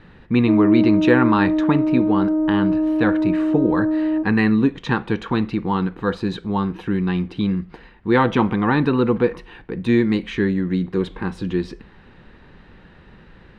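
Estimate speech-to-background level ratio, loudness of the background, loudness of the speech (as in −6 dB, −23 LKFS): −1.0 dB, −20.0 LKFS, −21.0 LKFS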